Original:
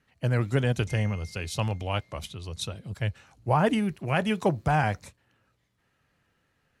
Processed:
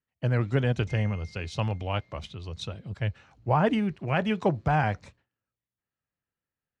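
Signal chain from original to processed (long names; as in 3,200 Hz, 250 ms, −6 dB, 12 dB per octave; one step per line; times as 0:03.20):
noise gate with hold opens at −51 dBFS
high-frequency loss of the air 120 metres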